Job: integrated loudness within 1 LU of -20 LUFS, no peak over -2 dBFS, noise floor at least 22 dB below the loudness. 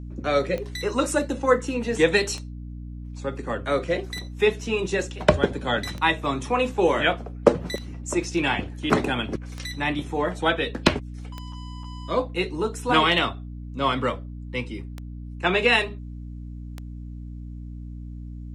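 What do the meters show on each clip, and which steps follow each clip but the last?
clicks 10; hum 60 Hz; harmonics up to 300 Hz; hum level -33 dBFS; loudness -24.5 LUFS; peak -2.0 dBFS; loudness target -20.0 LUFS
-> de-click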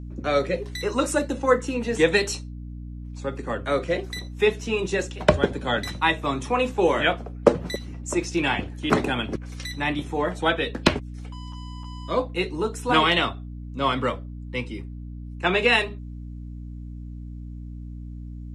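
clicks 0; hum 60 Hz; harmonics up to 300 Hz; hum level -33 dBFS
-> de-hum 60 Hz, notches 5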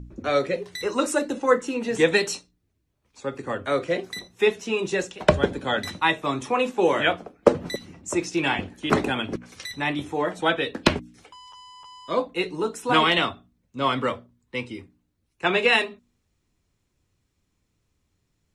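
hum none; loudness -24.5 LUFS; peak -2.0 dBFS; loudness target -20.0 LUFS
-> gain +4.5 dB; limiter -2 dBFS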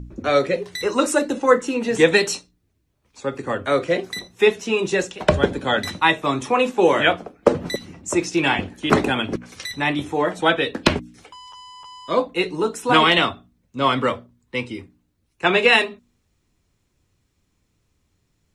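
loudness -20.5 LUFS; peak -2.0 dBFS; noise floor -69 dBFS

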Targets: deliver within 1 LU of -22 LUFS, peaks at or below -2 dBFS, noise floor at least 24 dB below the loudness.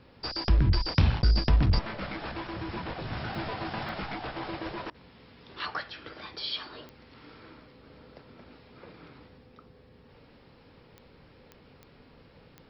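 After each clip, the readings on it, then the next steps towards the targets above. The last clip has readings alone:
clicks 7; loudness -30.5 LUFS; peak -11.0 dBFS; loudness target -22.0 LUFS
-> de-click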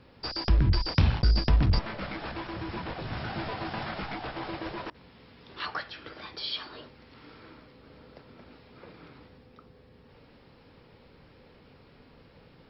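clicks 0; loudness -30.5 LUFS; peak -11.0 dBFS; loudness target -22.0 LUFS
-> gain +8.5 dB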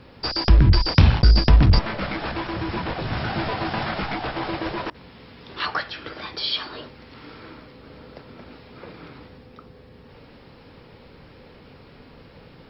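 loudness -22.0 LUFS; peak -2.5 dBFS; noise floor -48 dBFS

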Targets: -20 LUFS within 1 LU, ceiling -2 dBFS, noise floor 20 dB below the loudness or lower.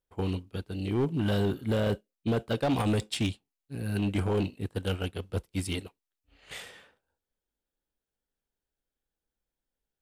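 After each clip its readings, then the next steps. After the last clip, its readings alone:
clipped 1.8%; flat tops at -22.0 dBFS; loudness -31.0 LUFS; peak -22.0 dBFS; loudness target -20.0 LUFS
-> clip repair -22 dBFS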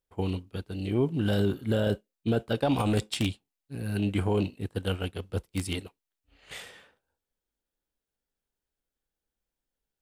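clipped 0.0%; loudness -30.0 LUFS; peak -13.0 dBFS; loudness target -20.0 LUFS
-> gain +10 dB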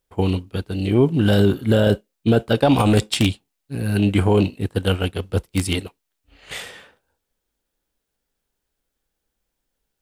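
loudness -20.0 LUFS; peak -3.0 dBFS; noise floor -79 dBFS

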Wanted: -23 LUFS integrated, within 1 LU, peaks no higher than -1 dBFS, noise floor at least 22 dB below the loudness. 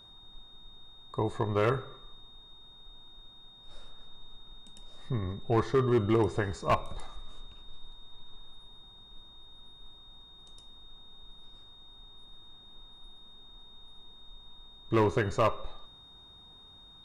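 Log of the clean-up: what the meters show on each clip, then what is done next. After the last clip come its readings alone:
clipped 0.4%; flat tops at -19.0 dBFS; steady tone 3700 Hz; tone level -52 dBFS; loudness -29.5 LUFS; peak -19.0 dBFS; loudness target -23.0 LUFS
-> clip repair -19 dBFS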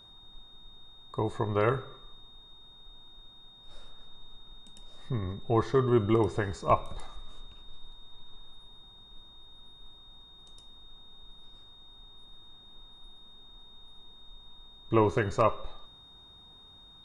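clipped 0.0%; steady tone 3700 Hz; tone level -52 dBFS
-> notch 3700 Hz, Q 30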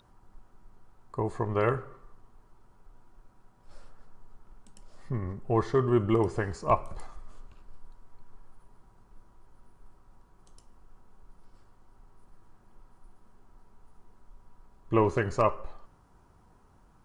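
steady tone none; loudness -28.5 LUFS; peak -10.5 dBFS; loudness target -23.0 LUFS
-> gain +5.5 dB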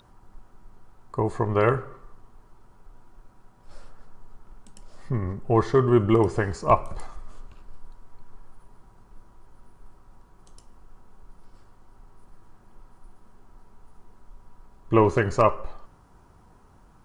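loudness -23.0 LUFS; peak -5.0 dBFS; noise floor -56 dBFS

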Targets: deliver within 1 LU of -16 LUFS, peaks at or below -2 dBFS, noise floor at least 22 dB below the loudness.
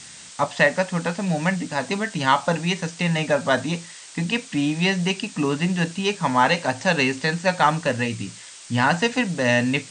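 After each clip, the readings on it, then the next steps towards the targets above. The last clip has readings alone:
noise floor -42 dBFS; noise floor target -44 dBFS; loudness -22.0 LUFS; peak -5.0 dBFS; loudness target -16.0 LUFS
-> denoiser 6 dB, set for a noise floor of -42 dBFS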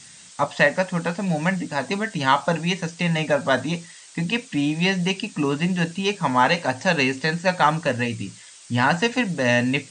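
noise floor -46 dBFS; loudness -22.0 LUFS; peak -5.0 dBFS; loudness target -16.0 LUFS
-> gain +6 dB; limiter -2 dBFS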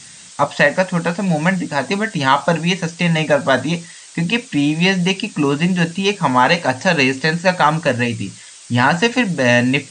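loudness -16.5 LUFS; peak -2.0 dBFS; noise floor -40 dBFS

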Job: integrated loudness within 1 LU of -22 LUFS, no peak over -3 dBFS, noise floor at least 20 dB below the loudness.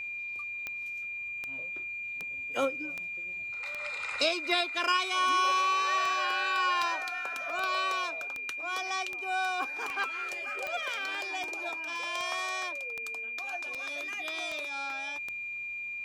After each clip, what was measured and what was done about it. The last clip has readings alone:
clicks 20; steady tone 2400 Hz; tone level -35 dBFS; loudness -31.0 LUFS; peak -14.5 dBFS; loudness target -22.0 LUFS
-> de-click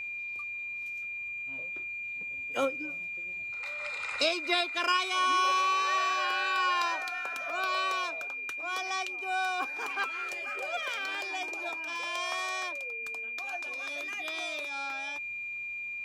clicks 0; steady tone 2400 Hz; tone level -35 dBFS
-> notch 2400 Hz, Q 30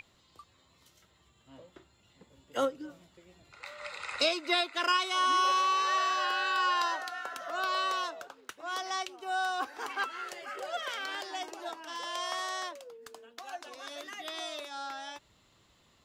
steady tone none; loudness -32.0 LUFS; peak -15.5 dBFS; loudness target -22.0 LUFS
-> gain +10 dB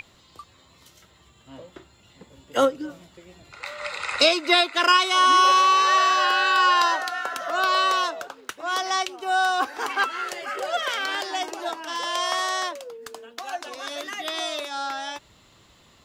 loudness -22.0 LUFS; peak -5.5 dBFS; noise floor -56 dBFS

